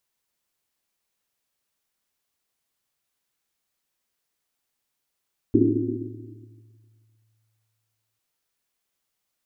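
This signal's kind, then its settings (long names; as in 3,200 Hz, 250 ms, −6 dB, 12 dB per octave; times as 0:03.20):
drum after Risset length 2.65 s, pitch 110 Hz, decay 2.70 s, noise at 310 Hz, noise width 130 Hz, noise 75%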